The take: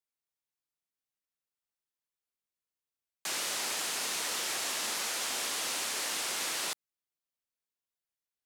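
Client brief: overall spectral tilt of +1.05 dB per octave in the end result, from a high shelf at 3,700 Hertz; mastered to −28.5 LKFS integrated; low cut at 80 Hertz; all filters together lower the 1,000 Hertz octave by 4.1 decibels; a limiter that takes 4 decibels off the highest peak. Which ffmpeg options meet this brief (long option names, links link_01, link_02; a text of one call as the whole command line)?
ffmpeg -i in.wav -af "highpass=80,equalizer=frequency=1000:width_type=o:gain=-6,highshelf=frequency=3700:gain=5.5,volume=1.5dB,alimiter=limit=-21dB:level=0:latency=1" out.wav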